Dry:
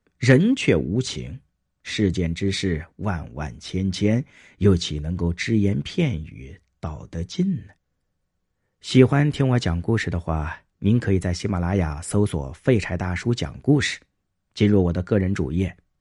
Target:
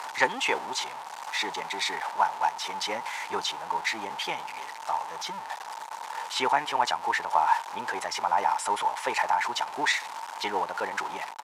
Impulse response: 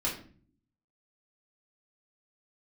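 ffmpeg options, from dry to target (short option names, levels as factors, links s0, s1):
-filter_complex "[0:a]aeval=exprs='val(0)+0.5*0.0376*sgn(val(0))':c=same,highpass=f=890:t=q:w=9.7,acrossover=split=9700[s0][s1];[s1]acompressor=threshold=0.00251:ratio=4:attack=1:release=60[s2];[s0][s2]amix=inputs=2:normalize=0,atempo=1.4,aresample=32000,aresample=44100,volume=0.708"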